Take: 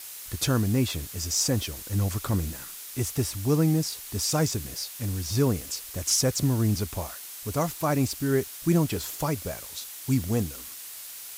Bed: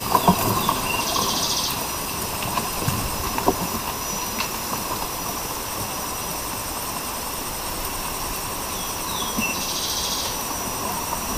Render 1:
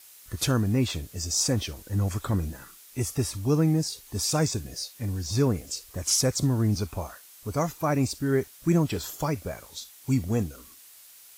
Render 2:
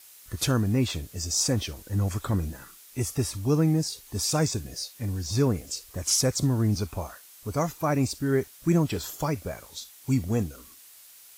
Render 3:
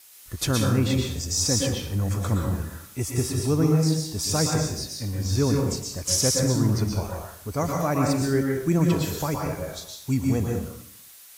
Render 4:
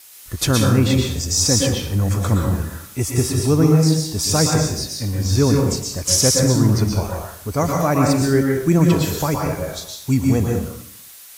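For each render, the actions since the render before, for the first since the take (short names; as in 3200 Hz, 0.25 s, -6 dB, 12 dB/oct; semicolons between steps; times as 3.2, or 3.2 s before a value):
noise print and reduce 10 dB
nothing audible
plate-style reverb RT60 0.68 s, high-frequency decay 0.8×, pre-delay 0.105 s, DRR -0.5 dB
gain +6.5 dB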